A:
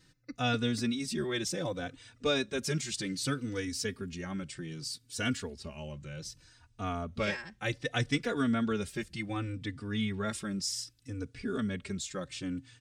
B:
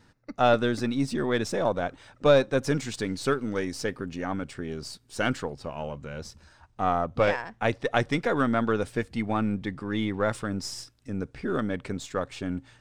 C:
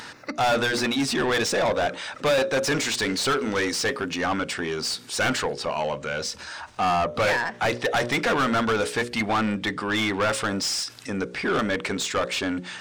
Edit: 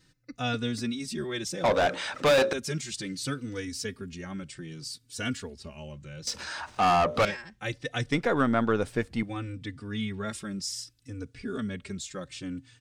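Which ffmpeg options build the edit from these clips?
-filter_complex "[2:a]asplit=2[s0][s1];[0:a]asplit=4[s2][s3][s4][s5];[s2]atrim=end=1.642[s6];[s0]atrim=start=1.638:end=2.532[s7];[s3]atrim=start=2.528:end=6.272[s8];[s1]atrim=start=6.268:end=7.252[s9];[s4]atrim=start=7.248:end=8.122[s10];[1:a]atrim=start=8.118:end=9.232[s11];[s5]atrim=start=9.228[s12];[s6][s7]acrossfade=d=0.004:c1=hsin:c2=hsin[s13];[s13][s8]acrossfade=d=0.004:c1=hsin:c2=hsin[s14];[s14][s9]acrossfade=d=0.004:c1=hsin:c2=hsin[s15];[s15][s10]acrossfade=d=0.004:c1=hsin:c2=hsin[s16];[s16][s11]acrossfade=d=0.004:c1=hsin:c2=hsin[s17];[s17][s12]acrossfade=d=0.004:c1=hsin:c2=hsin"

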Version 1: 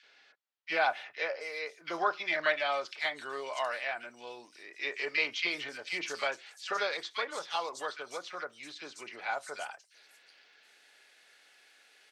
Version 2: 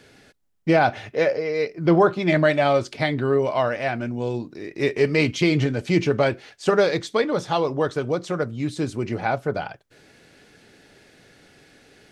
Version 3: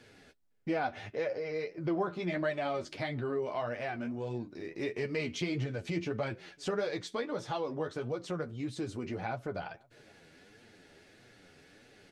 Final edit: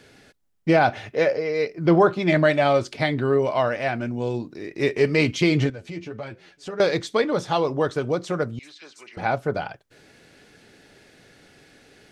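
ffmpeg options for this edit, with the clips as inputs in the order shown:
-filter_complex "[1:a]asplit=3[s0][s1][s2];[s0]atrim=end=5.702[s3];[2:a]atrim=start=5.698:end=6.802[s4];[s1]atrim=start=6.798:end=8.592[s5];[0:a]atrim=start=8.588:end=9.172[s6];[s2]atrim=start=9.168[s7];[s3][s4]acrossfade=d=0.004:c1=hsin:c2=hsin[s8];[s8][s5]acrossfade=d=0.004:c1=hsin:c2=hsin[s9];[s9][s6]acrossfade=d=0.004:c1=hsin:c2=hsin[s10];[s10][s7]acrossfade=d=0.004:c1=hsin:c2=hsin"

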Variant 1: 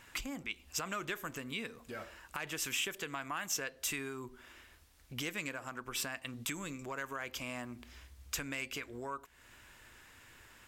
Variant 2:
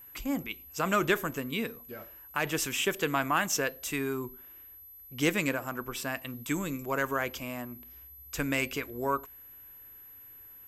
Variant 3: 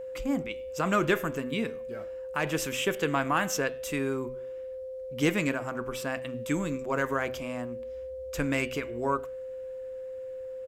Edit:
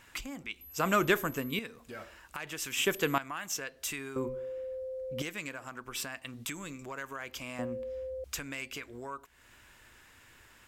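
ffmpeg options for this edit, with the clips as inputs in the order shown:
-filter_complex "[1:a]asplit=2[s0][s1];[2:a]asplit=2[s2][s3];[0:a]asplit=5[s4][s5][s6][s7][s8];[s4]atrim=end=0.612[s9];[s0]atrim=start=0.608:end=1.592[s10];[s5]atrim=start=1.588:end=2.772[s11];[s1]atrim=start=2.768:end=3.182[s12];[s6]atrim=start=3.178:end=4.162[s13];[s2]atrim=start=4.158:end=5.222[s14];[s7]atrim=start=5.218:end=7.592[s15];[s3]atrim=start=7.588:end=8.242[s16];[s8]atrim=start=8.238[s17];[s9][s10]acrossfade=d=0.004:c1=hsin:c2=hsin[s18];[s18][s11]acrossfade=d=0.004:c1=hsin:c2=hsin[s19];[s19][s12]acrossfade=d=0.004:c1=hsin:c2=hsin[s20];[s20][s13]acrossfade=d=0.004:c1=hsin:c2=hsin[s21];[s21][s14]acrossfade=d=0.004:c1=hsin:c2=hsin[s22];[s22][s15]acrossfade=d=0.004:c1=hsin:c2=hsin[s23];[s23][s16]acrossfade=d=0.004:c1=hsin:c2=hsin[s24];[s24][s17]acrossfade=d=0.004:c1=hsin:c2=hsin"

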